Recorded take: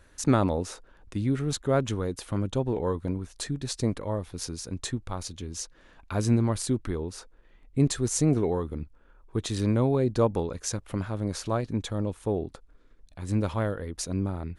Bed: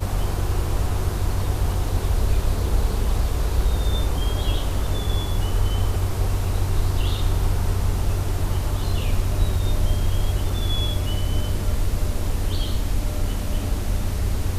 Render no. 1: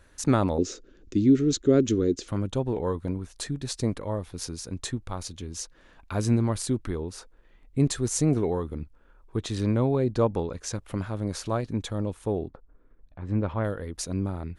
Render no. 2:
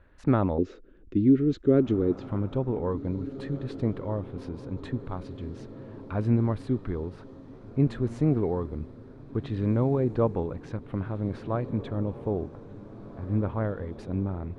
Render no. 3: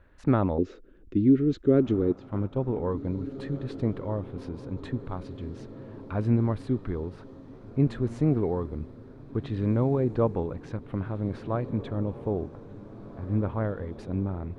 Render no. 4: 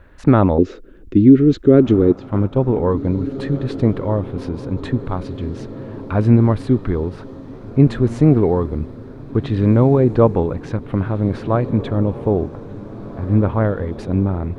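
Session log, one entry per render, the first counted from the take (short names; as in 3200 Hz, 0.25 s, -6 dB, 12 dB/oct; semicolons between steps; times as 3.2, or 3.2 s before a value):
0.58–2.28 EQ curve 150 Hz 0 dB, 250 Hz +9 dB, 360 Hz +12 dB, 550 Hz -1 dB, 900 Hz -16 dB, 1300 Hz -6 dB, 2700 Hz -1 dB, 4800 Hz +3 dB, 6900 Hz +6 dB, 10000 Hz -23 dB; 9.37–10.75 high shelf 9900 Hz -12 dB; 12.47–13.63 LPF 1100 Hz -> 2300 Hz
air absorption 490 m; diffused feedback echo 1.866 s, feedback 56%, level -15 dB
2.12–2.64 gate -30 dBFS, range -7 dB
gain +11.5 dB; limiter -1 dBFS, peak gain reduction 2.5 dB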